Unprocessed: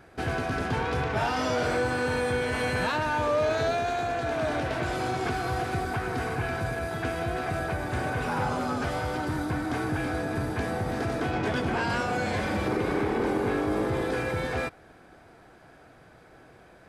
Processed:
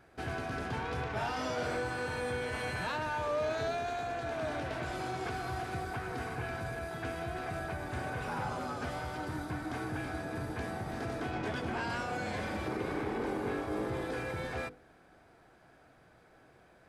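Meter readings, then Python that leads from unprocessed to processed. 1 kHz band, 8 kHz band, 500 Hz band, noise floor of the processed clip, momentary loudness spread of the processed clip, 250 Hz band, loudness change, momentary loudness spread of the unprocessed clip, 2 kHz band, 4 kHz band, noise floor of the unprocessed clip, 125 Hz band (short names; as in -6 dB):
-7.5 dB, -7.5 dB, -8.0 dB, -61 dBFS, 4 LU, -8.5 dB, -8.0 dB, 4 LU, -7.5 dB, -7.5 dB, -54 dBFS, -8.5 dB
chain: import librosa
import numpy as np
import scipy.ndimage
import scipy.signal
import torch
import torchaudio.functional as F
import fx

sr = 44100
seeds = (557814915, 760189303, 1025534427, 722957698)

y = fx.hum_notches(x, sr, base_hz=50, count=10)
y = F.gain(torch.from_numpy(y), -7.5).numpy()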